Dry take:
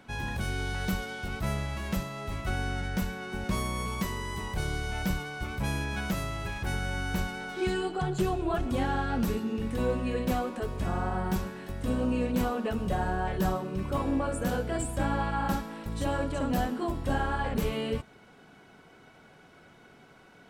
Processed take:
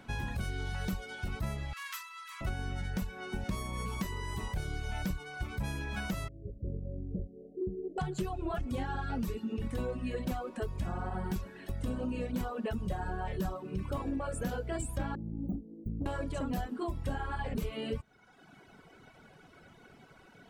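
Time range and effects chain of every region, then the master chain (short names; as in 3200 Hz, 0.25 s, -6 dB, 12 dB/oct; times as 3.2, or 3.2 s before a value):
1.73–2.41 steep high-pass 990 Hz 96 dB/oct + flutter echo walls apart 8 m, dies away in 0.24 s
6.28–7.98 steep low-pass 600 Hz 96 dB/oct + tilt +1.5 dB/oct
15.15–16.06 inverse Chebyshev band-stop 1300–9500 Hz, stop band 70 dB + overdrive pedal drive 18 dB, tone 6300 Hz, clips at -20.5 dBFS
whole clip: reverb removal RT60 0.99 s; low shelf 130 Hz +5.5 dB; compressor 4:1, threshold -32 dBFS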